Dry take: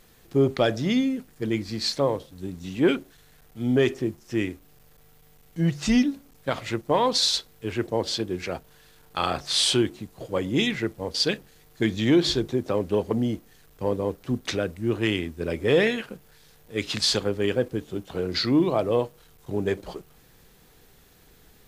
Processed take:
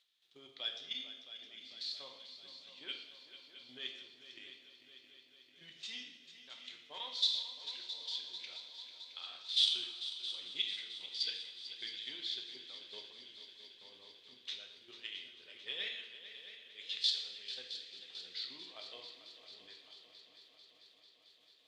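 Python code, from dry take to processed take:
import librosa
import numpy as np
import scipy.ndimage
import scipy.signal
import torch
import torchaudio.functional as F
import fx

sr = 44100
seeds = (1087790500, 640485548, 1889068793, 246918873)

y = fx.level_steps(x, sr, step_db=11)
y = fx.bandpass_q(y, sr, hz=3500.0, q=4.3)
y = fx.echo_heads(y, sr, ms=222, heads='second and third', feedback_pct=69, wet_db=-13)
y = fx.rev_double_slope(y, sr, seeds[0], early_s=0.78, late_s=2.4, knee_db=-18, drr_db=2.5)
y = y * 10.0 ** (-3.0 / 20.0)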